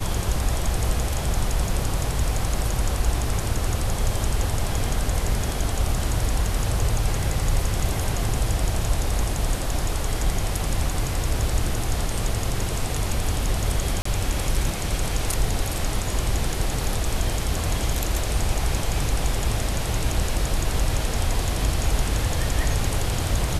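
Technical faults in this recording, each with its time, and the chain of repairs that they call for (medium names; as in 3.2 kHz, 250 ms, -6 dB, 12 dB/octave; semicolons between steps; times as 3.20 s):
14.02–14.05 s: dropout 34 ms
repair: interpolate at 14.02 s, 34 ms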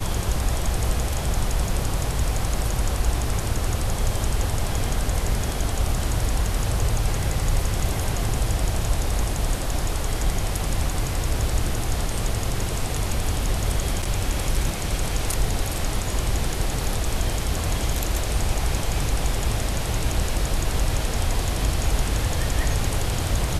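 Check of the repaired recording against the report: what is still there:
nothing left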